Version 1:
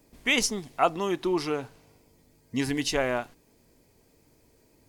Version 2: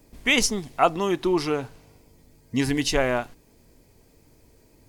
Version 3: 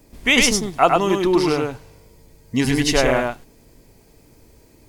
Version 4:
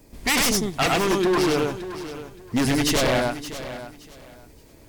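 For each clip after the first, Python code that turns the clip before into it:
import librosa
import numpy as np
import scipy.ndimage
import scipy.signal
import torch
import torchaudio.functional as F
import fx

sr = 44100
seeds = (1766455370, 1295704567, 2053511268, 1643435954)

y1 = fx.low_shelf(x, sr, hz=90.0, db=8.0)
y1 = y1 * 10.0 ** (3.5 / 20.0)
y2 = y1 + 10.0 ** (-3.0 / 20.0) * np.pad(y1, (int(102 * sr / 1000.0), 0))[:len(y1)]
y2 = y2 * 10.0 ** (4.0 / 20.0)
y3 = 10.0 ** (-15.0 / 20.0) * (np.abs((y2 / 10.0 ** (-15.0 / 20.0) + 3.0) % 4.0 - 2.0) - 1.0)
y3 = fx.echo_feedback(y3, sr, ms=571, feedback_pct=23, wet_db=-13.0)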